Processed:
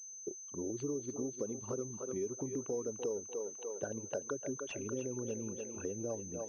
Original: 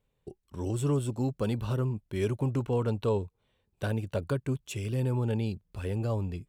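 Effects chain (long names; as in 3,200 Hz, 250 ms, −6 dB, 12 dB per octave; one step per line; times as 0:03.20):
spectral envelope exaggerated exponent 2
high-pass filter 330 Hz 12 dB per octave
on a send: feedback echo with a high-pass in the loop 297 ms, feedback 57%, high-pass 550 Hz, level −6.5 dB
on the sum: downward compressor 4 to 1, threshold −44 dBFS, peak gain reduction 16 dB
switching amplifier with a slow clock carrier 6,200 Hz
level +6.5 dB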